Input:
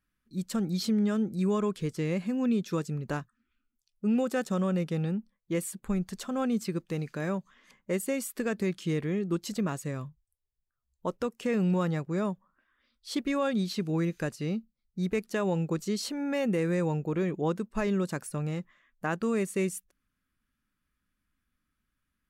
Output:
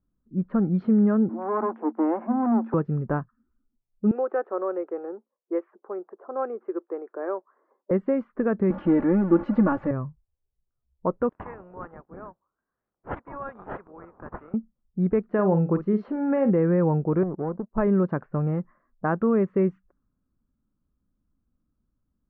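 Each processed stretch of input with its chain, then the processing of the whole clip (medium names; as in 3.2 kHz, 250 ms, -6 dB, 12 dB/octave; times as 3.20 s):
1.29–2.74 s: distance through air 360 m + waveshaping leveller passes 3 + rippled Chebyshev high-pass 220 Hz, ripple 9 dB
4.11–7.91 s: elliptic high-pass 350 Hz, stop band 60 dB + distance through air 330 m
8.70–9.91 s: jump at every zero crossing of -35 dBFS + comb 3.5 ms, depth 89%
11.29–14.54 s: band-pass filter 3.9 kHz, Q 0.65 + tilt EQ +4.5 dB/octave + decimation joined by straight lines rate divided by 6×
15.34–16.51 s: low-pass 10 kHz + doubling 47 ms -10.5 dB
17.23–17.78 s: low-pass 1.1 kHz 24 dB/octave + compression 5:1, threshold -29 dBFS + power-law waveshaper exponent 1.4
whole clip: low-pass 1.4 kHz 24 dB/octave; level-controlled noise filter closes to 640 Hz, open at -25.5 dBFS; trim +7 dB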